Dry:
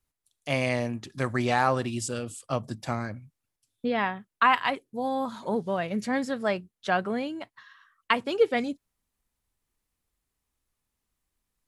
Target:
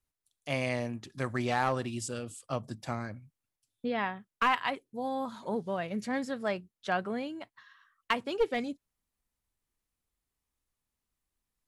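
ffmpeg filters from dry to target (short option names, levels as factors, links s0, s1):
-af "aeval=exprs='clip(val(0),-1,0.112)':c=same,volume=0.562"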